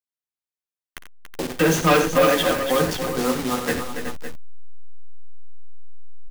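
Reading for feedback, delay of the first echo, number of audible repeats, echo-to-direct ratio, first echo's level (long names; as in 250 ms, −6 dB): repeats not evenly spaced, 56 ms, 5, −3.5 dB, −13.0 dB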